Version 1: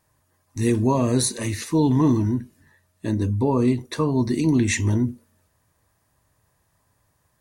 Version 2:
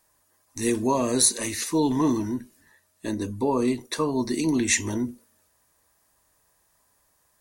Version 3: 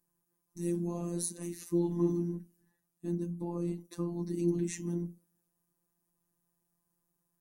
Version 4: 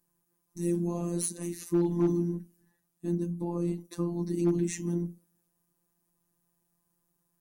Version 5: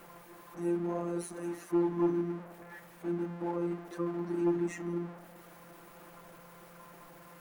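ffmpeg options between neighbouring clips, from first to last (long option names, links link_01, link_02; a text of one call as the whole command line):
ffmpeg -i in.wav -filter_complex "[0:a]equalizer=frequency=110:width=0.87:gain=-14,acrossover=split=720|4600[link_01][link_02][link_03];[link_03]acontrast=38[link_04];[link_01][link_02][link_04]amix=inputs=3:normalize=0" out.wav
ffmpeg -i in.wav -af "equalizer=frequency=125:width_type=o:width=1:gain=7,equalizer=frequency=250:width_type=o:width=1:gain=11,equalizer=frequency=500:width_type=o:width=1:gain=-7,equalizer=frequency=1000:width_type=o:width=1:gain=-5,equalizer=frequency=2000:width_type=o:width=1:gain=-10,equalizer=frequency=4000:width_type=o:width=1:gain=-10,equalizer=frequency=8000:width_type=o:width=1:gain=-5,afftfilt=real='hypot(re,im)*cos(PI*b)':imag='0':win_size=1024:overlap=0.75,volume=-8dB" out.wav
ffmpeg -i in.wav -af "asoftclip=type=hard:threshold=-22.5dB,volume=4dB" out.wav
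ffmpeg -i in.wav -filter_complex "[0:a]aeval=exprs='val(0)+0.5*0.0112*sgn(val(0))':channel_layout=same,acrossover=split=390 2000:gain=0.178 1 0.112[link_01][link_02][link_03];[link_01][link_02][link_03]amix=inputs=3:normalize=0,bandreject=frequency=60.42:width_type=h:width=4,bandreject=frequency=120.84:width_type=h:width=4,bandreject=frequency=181.26:width_type=h:width=4,bandreject=frequency=241.68:width_type=h:width=4,bandreject=frequency=302.1:width_type=h:width=4,bandreject=frequency=362.52:width_type=h:width=4,bandreject=frequency=422.94:width_type=h:width=4,bandreject=frequency=483.36:width_type=h:width=4,bandreject=frequency=543.78:width_type=h:width=4,bandreject=frequency=604.2:width_type=h:width=4,bandreject=frequency=664.62:width_type=h:width=4,bandreject=frequency=725.04:width_type=h:width=4,bandreject=frequency=785.46:width_type=h:width=4,bandreject=frequency=845.88:width_type=h:width=4,bandreject=frequency=906.3:width_type=h:width=4,bandreject=frequency=966.72:width_type=h:width=4,bandreject=frequency=1027.14:width_type=h:width=4,bandreject=frequency=1087.56:width_type=h:width=4,bandreject=frequency=1147.98:width_type=h:width=4,bandreject=frequency=1208.4:width_type=h:width=4,bandreject=frequency=1268.82:width_type=h:width=4,bandreject=frequency=1329.24:width_type=h:width=4,bandreject=frequency=1389.66:width_type=h:width=4,bandreject=frequency=1450.08:width_type=h:width=4,bandreject=frequency=1510.5:width_type=h:width=4,bandreject=frequency=1570.92:width_type=h:width=4,bandreject=frequency=1631.34:width_type=h:width=4,bandreject=frequency=1691.76:width_type=h:width=4,bandreject=frequency=1752.18:width_type=h:width=4,bandreject=frequency=1812.6:width_type=h:width=4,bandreject=frequency=1873.02:width_type=h:width=4,bandreject=frequency=1933.44:width_type=h:width=4,bandreject=frequency=1993.86:width_type=h:width=4,bandreject=frequency=2054.28:width_type=h:width=4,bandreject=frequency=2114.7:width_type=h:width=4,bandreject=frequency=2175.12:width_type=h:width=4,bandreject=frequency=2235.54:width_type=h:width=4,bandreject=frequency=2295.96:width_type=h:width=4,volume=4dB" out.wav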